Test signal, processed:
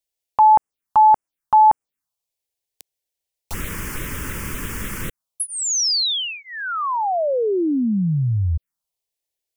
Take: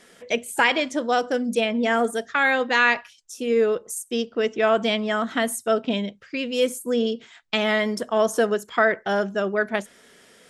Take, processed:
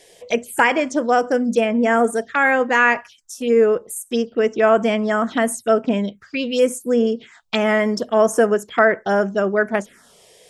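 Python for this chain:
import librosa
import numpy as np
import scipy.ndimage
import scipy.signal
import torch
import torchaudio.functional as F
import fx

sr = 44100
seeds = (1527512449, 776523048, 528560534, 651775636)

y = fx.env_phaser(x, sr, low_hz=210.0, high_hz=3900.0, full_db=-20.5)
y = y * 10.0 ** (5.5 / 20.0)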